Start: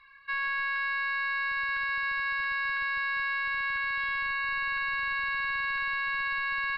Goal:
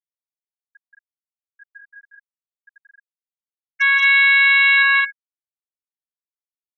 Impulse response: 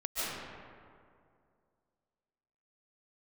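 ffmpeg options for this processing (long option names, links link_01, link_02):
-filter_complex "[0:a]asettb=1/sr,asplit=3[link_01][link_02][link_03];[link_01]atrim=end=1.534[link_04];[link_02]atrim=start=1.53:end=2.07,asetpts=PTS-STARTPTS,afade=type=in:duration=0.004:curve=qsin,afade=type=out:start_time=0.536:duration=0.004:curve=qsin,aecho=1:1:7.4:0.35,atrim=end_sample=23814[link_05];[link_03]atrim=start=2.066[link_06];[link_04][link_05]acrossfade=duration=0.004:curve1=hsin:curve2=qsin[link_07];[link_07][link_06]acrossfade=duration=0.004:curve1=qsin:curve2=hsin,asettb=1/sr,asplit=3[link_08][link_09][link_10];[link_08]atrim=end=3.804[link_11];[link_09]atrim=start=3.8:end=4.83,asetpts=PTS-STARTPTS,afade=type=in:duration=0.004:curve=qsin,afade=type=out:start_time=1.026:duration=0.004:curve=qsin,acontrast=69[link_12];[link_10]atrim=start=4.826[link_13];[link_11][link_12]acrossfade=duration=0.004:curve1=hsin:curve2=qsin[link_14];[link_14][link_13]acrossfade=duration=0.004:curve1=qsin:curve2=hsin,agate=range=-33dB:threshold=-24dB:ratio=3:detection=peak,equalizer=frequency=2000:width_type=o:width=0.57:gain=11,acrusher=bits=4:dc=4:mix=0:aa=0.000001,asoftclip=type=tanh:threshold=-14.5dB,highpass=frequency=690:width=0.5412,highpass=frequency=690:width=1.3066,afftfilt=real='re*gte(hypot(re,im),0.126)':imag='im*gte(hypot(re,im),0.126)':win_size=1024:overlap=0.75,aecho=1:1:177.8|218.7:0.794|0.794,volume=6.5dB"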